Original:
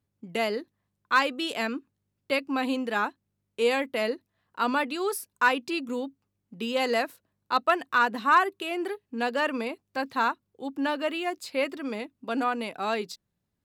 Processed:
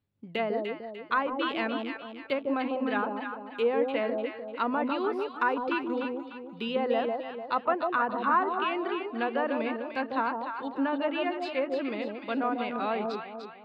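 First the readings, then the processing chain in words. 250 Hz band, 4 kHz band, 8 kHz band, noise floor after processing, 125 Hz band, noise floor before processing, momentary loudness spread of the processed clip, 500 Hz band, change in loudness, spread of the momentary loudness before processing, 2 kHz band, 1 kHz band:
+0.5 dB, -6.0 dB, under -25 dB, -46 dBFS, n/a, -80 dBFS, 8 LU, +0.5 dB, -2.0 dB, 11 LU, -5.5 dB, -2.0 dB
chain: treble ducked by the level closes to 1100 Hz, closed at -22 dBFS; resonant high shelf 5000 Hz -10.5 dB, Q 1.5; echo with dull and thin repeats by turns 0.149 s, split 860 Hz, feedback 63%, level -2 dB; gain -2 dB

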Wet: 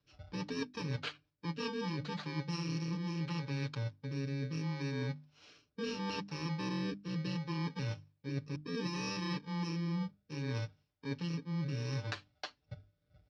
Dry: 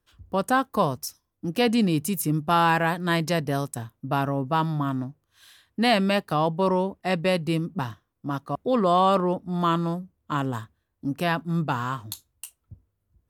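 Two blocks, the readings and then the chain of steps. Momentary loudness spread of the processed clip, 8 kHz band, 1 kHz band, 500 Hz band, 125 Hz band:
7 LU, -14.5 dB, -22.0 dB, -18.0 dB, -8.0 dB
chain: FFT order left unsorted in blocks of 64 samples; in parallel at 0 dB: limiter -19 dBFS, peak gain reduction 11 dB; on the sum: steep low-pass 5000 Hz 36 dB/oct; harmonic-percussive split percussive -4 dB; comb 6.8 ms, depth 61%; rotary speaker horn 6 Hz, later 0.7 Hz, at 1.43; reverse; compressor 10:1, threshold -34 dBFS, peak gain reduction 18.5 dB; reverse; HPF 58 Hz; notches 50/100/150/200/250/300 Hz

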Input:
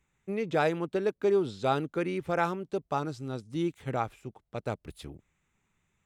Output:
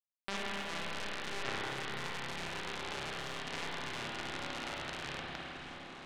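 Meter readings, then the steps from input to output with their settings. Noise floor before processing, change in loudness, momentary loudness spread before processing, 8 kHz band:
-78 dBFS, -8.5 dB, 13 LU, +6.0 dB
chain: spectral trails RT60 1.71 s; low-pass opened by the level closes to 530 Hz, open at -24 dBFS; compressor 4:1, threshold -41 dBFS, peak gain reduction 18 dB; limiter -38.5 dBFS, peak gain reduction 11 dB; companded quantiser 2-bit; air absorption 92 m; repeats that get brighter 0.522 s, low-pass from 200 Hz, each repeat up 2 oct, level -6 dB; spring tank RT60 3.5 s, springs 30/51 ms, chirp 25 ms, DRR -6.5 dB; gain +4 dB

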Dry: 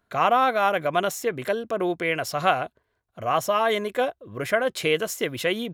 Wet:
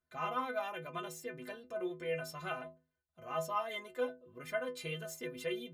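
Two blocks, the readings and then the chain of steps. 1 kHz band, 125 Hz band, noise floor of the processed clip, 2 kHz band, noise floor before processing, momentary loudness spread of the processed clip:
-17.0 dB, -12.5 dB, under -85 dBFS, -15.5 dB, -75 dBFS, 8 LU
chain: low shelf 140 Hz +3 dB; metallic resonator 75 Hz, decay 0.55 s, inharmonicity 0.03; gain -5 dB

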